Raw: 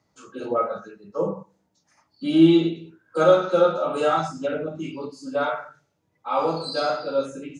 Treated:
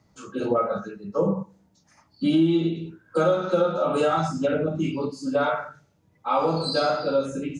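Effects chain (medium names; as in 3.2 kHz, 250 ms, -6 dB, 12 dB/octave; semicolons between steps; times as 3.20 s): bass shelf 140 Hz +11 dB; compression 5:1, threshold -22 dBFS, peak gain reduction 13.5 dB; peaking EQ 200 Hz +4 dB 0.34 oct; trim +3.5 dB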